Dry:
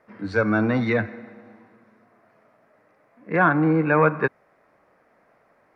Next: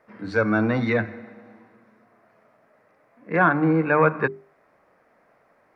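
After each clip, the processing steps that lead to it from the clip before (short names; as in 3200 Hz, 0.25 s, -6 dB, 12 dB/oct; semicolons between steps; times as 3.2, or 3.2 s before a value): notches 50/100/150/200/250/300/350/400 Hz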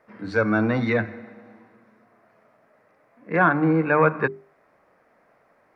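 nothing audible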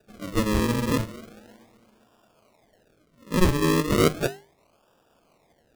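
decimation with a swept rate 41×, swing 100% 0.35 Hz; gain -2 dB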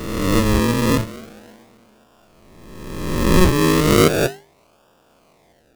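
spectral swells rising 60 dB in 1.45 s; gain +4 dB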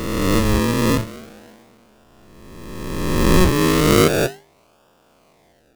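spectral swells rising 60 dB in 1.81 s; gain -2.5 dB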